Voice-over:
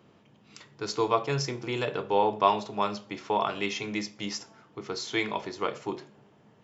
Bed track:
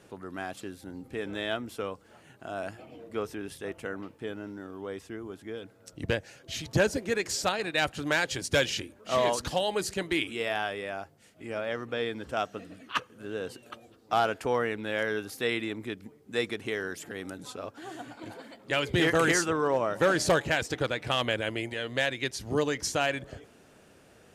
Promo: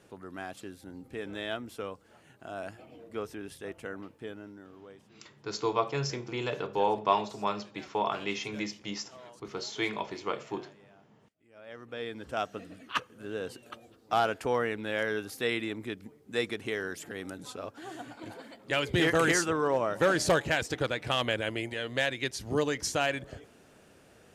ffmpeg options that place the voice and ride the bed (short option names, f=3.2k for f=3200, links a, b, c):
-filter_complex "[0:a]adelay=4650,volume=-3dB[a];[1:a]volume=20.5dB,afade=t=out:st=4.16:d=0.99:silence=0.0841395,afade=t=in:st=11.52:d=0.98:silence=0.0630957[b];[a][b]amix=inputs=2:normalize=0"